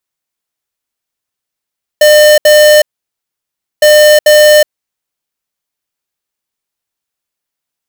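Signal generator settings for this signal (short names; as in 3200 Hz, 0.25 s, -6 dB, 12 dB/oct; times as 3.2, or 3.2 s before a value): beep pattern square 603 Hz, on 0.37 s, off 0.07 s, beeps 2, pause 1.00 s, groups 2, -4 dBFS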